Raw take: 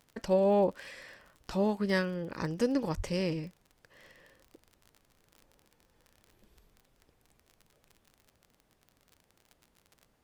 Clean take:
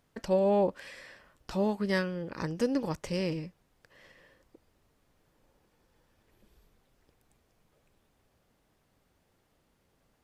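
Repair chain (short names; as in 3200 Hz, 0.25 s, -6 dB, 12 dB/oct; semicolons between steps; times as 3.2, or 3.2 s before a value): de-click; de-plosive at 2.96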